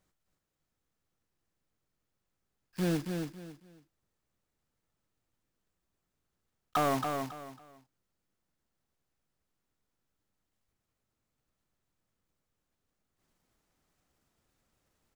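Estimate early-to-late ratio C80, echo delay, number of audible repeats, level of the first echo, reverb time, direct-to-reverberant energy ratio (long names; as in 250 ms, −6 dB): no reverb audible, 275 ms, 3, −5.5 dB, no reverb audible, no reverb audible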